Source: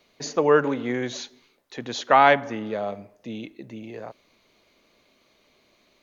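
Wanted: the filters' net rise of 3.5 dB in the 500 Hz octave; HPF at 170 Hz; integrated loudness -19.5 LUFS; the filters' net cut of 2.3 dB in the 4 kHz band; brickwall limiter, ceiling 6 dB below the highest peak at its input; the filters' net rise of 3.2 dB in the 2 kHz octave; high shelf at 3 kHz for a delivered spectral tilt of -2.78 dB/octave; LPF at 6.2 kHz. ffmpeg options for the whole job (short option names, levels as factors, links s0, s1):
-af "highpass=170,lowpass=6200,equalizer=f=500:t=o:g=4,equalizer=f=2000:t=o:g=3.5,highshelf=f=3000:g=6,equalizer=f=4000:t=o:g=-8,volume=1.5,alimiter=limit=0.596:level=0:latency=1"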